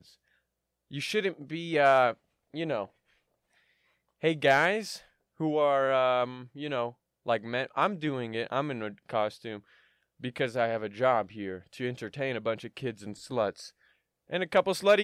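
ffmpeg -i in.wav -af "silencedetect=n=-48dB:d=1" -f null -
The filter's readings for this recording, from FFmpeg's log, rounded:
silence_start: 2.86
silence_end: 4.22 | silence_duration: 1.36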